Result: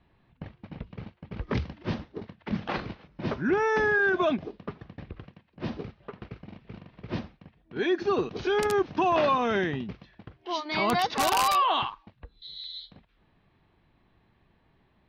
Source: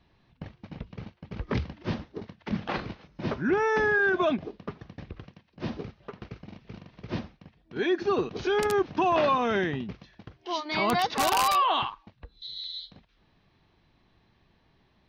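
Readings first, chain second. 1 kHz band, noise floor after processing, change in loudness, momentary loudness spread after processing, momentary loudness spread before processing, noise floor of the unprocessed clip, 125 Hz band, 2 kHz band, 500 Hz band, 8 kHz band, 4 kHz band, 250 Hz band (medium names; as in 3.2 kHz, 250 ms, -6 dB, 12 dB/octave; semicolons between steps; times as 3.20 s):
0.0 dB, -67 dBFS, 0.0 dB, 22 LU, 22 LU, -66 dBFS, 0.0 dB, 0.0 dB, 0.0 dB, 0.0 dB, -0.5 dB, 0.0 dB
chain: level-controlled noise filter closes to 2.8 kHz, open at -22 dBFS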